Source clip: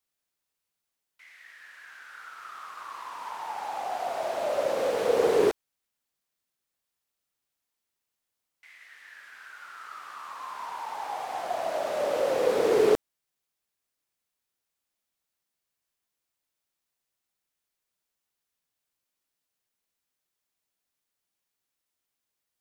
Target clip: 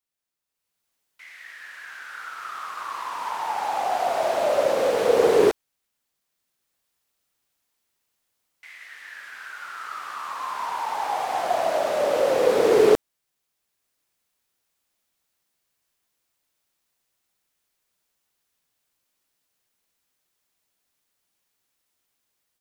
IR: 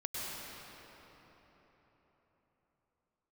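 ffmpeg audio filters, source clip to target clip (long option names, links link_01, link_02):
-af "dynaudnorm=framelen=480:gausssize=3:maxgain=12dB,volume=-4dB"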